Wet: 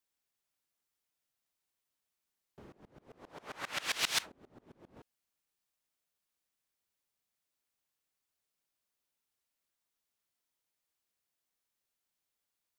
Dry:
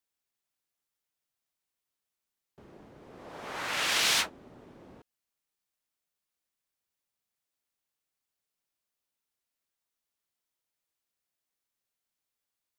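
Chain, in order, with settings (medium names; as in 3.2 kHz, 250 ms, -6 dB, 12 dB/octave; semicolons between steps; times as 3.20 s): 2.72–4.97 s: sawtooth tremolo in dB swelling 7.5 Hz, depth 25 dB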